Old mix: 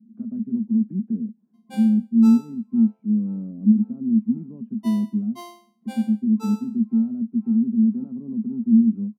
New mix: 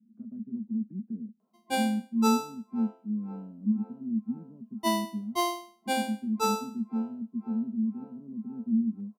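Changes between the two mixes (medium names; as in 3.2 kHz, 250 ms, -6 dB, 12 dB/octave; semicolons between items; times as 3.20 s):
speech -11.0 dB; background +11.5 dB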